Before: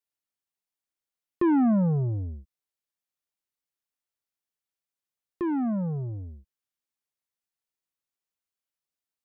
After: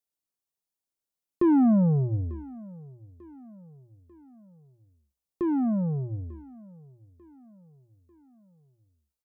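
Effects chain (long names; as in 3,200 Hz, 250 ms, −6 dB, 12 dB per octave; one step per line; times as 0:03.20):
parametric band 2,000 Hz −8.5 dB 1.9 octaves
mains-hum notches 60/120 Hz
repeating echo 894 ms, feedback 50%, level −22 dB
level +2 dB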